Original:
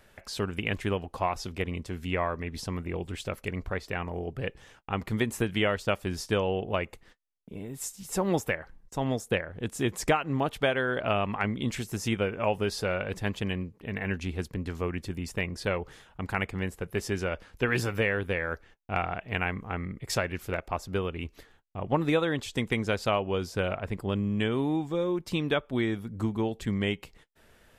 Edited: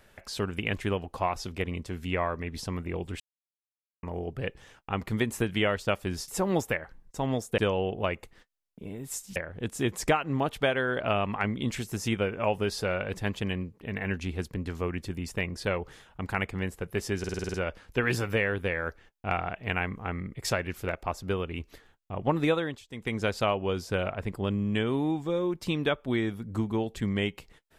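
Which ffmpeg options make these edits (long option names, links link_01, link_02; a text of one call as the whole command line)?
ffmpeg -i in.wav -filter_complex "[0:a]asplit=15[link_01][link_02][link_03][link_04][link_05][link_06][link_07][link_08][link_09][link_10][link_11][link_12][link_13][link_14][link_15];[link_01]atrim=end=3.2,asetpts=PTS-STARTPTS,afade=type=out:start_time=3.196:duration=0.004:curve=hsin[link_16];[link_02]atrim=start=3.2:end=4.03,asetpts=PTS-STARTPTS,volume=0[link_17];[link_03]atrim=start=4.03:end=6.282,asetpts=PTS-STARTPTS,afade=type=in:duration=0.004:curve=hsin[link_18];[link_04]atrim=start=8.058:end=9.362[link_19];[link_05]atrim=start=6.278:end=8.062[link_20];[link_06]atrim=start=9.358:end=17.242[link_21];[link_07]atrim=start=17.188:end=17.242[link_22];[link_08]atrim=start=17.188:end=17.242[link_23];[link_09]atrim=start=17.188:end=17.242[link_24];[link_10]atrim=start=17.188:end=17.242[link_25];[link_11]atrim=start=17.188:end=17.242[link_26];[link_12]atrim=start=17.188:end=17.242[link_27];[link_13]atrim=start=17.188:end=22.52,asetpts=PTS-STARTPTS,afade=type=out:start_time=4.992:duration=0.34:silence=0.0841395[link_28];[link_14]atrim=start=22.52:end=22.53,asetpts=PTS-STARTPTS,volume=-21.5dB[link_29];[link_15]atrim=start=22.53,asetpts=PTS-STARTPTS,afade=type=in:duration=0.34:silence=0.0841395[link_30];[link_16][link_17][link_18]concat=n=3:v=0:a=1[link_31];[link_31][link_19]acrossfade=duration=0.004:curve1=hsin:curve2=hsin[link_32];[link_32][link_20]acrossfade=duration=0.004:curve1=hsin:curve2=hsin[link_33];[link_33][link_21]acrossfade=duration=0.004:curve1=hsin:curve2=hsin[link_34];[link_34][link_22]acrossfade=duration=0.004:curve1=hsin:curve2=hsin[link_35];[link_35][link_23]acrossfade=duration=0.004:curve1=hsin:curve2=hsin[link_36];[link_36][link_24]acrossfade=duration=0.004:curve1=hsin:curve2=hsin[link_37];[link_37][link_25]acrossfade=duration=0.004:curve1=hsin:curve2=hsin[link_38];[link_38][link_26]acrossfade=duration=0.004:curve1=hsin:curve2=hsin[link_39];[link_39][link_27]acrossfade=duration=0.004:curve1=hsin:curve2=hsin[link_40];[link_28][link_29][link_30]concat=n=3:v=0:a=1[link_41];[link_40][link_41]acrossfade=duration=0.004:curve1=hsin:curve2=hsin" out.wav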